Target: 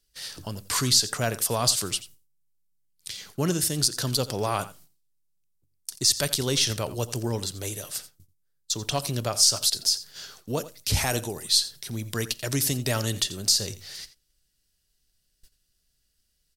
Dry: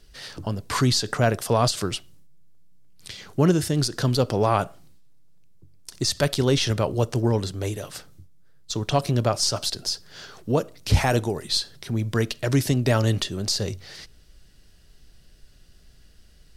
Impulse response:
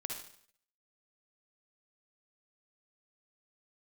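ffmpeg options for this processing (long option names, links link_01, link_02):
-af "agate=range=-16dB:threshold=-44dB:ratio=16:detection=peak,aecho=1:1:86:0.158,crystalizer=i=4.5:c=0,volume=-7.5dB"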